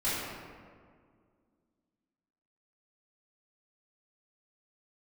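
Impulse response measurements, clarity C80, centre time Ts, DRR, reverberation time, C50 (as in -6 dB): 0.5 dB, 119 ms, -12.5 dB, 2.0 s, -2.0 dB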